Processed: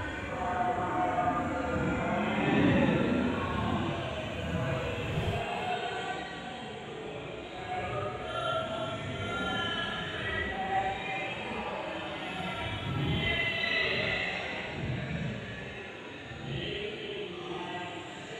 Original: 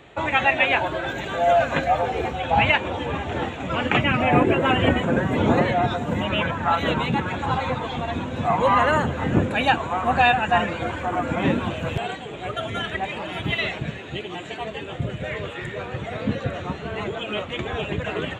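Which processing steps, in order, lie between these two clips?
extreme stretch with random phases 5.2×, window 0.10 s, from 0:10.96
feedback echo with a high-pass in the loop 365 ms, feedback 37%, level −8 dB
level −6 dB

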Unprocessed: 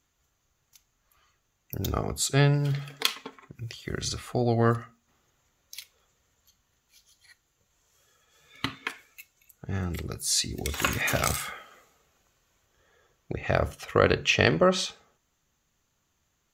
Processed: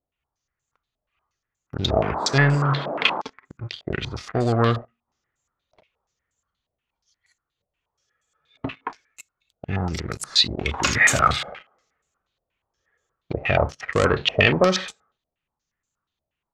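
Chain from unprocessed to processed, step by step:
leveller curve on the samples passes 3
0:01.88–0:03.20: noise in a band 160–1,400 Hz −26 dBFS
low-pass on a step sequencer 8.4 Hz 640–7,800 Hz
level −6.5 dB

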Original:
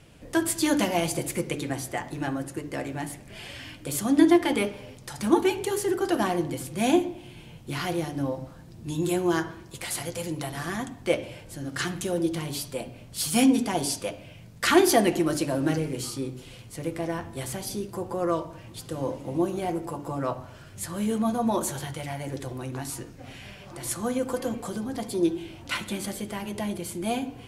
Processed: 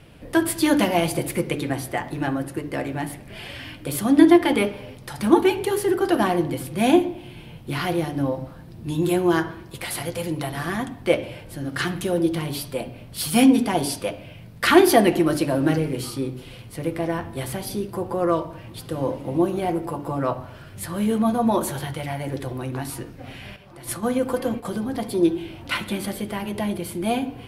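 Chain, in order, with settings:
0:23.56–0:24.65: noise gate −33 dBFS, range −8 dB
parametric band 6,900 Hz −10.5 dB 0.78 octaves
level +5 dB

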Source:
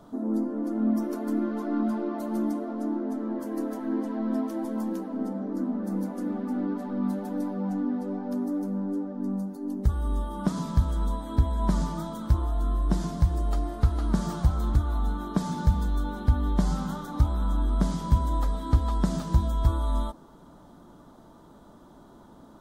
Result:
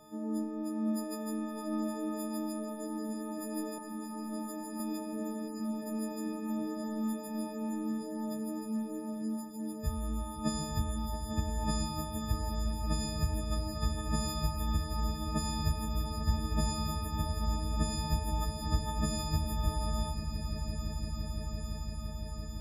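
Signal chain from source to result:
every partial snapped to a pitch grid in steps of 6 semitones
0:03.78–0:04.80: phaser with its sweep stopped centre 1,100 Hz, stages 4
echo that builds up and dies away 170 ms, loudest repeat 8, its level −10.5 dB
level −8 dB

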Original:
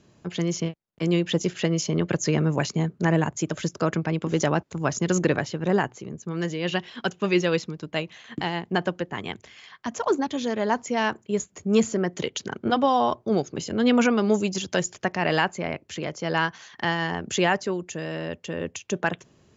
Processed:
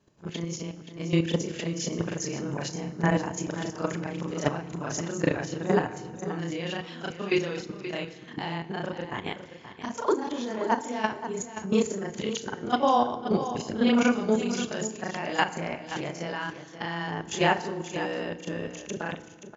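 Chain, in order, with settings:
every overlapping window played backwards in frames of 83 ms
parametric band 900 Hz +2 dB 0.59 octaves
output level in coarse steps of 12 dB
on a send: single-tap delay 527 ms −11.5 dB
on the sum: feedback delay network reverb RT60 1.6 s, low-frequency decay 1.3×, high-frequency decay 0.65×, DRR 12 dB
level +3.5 dB

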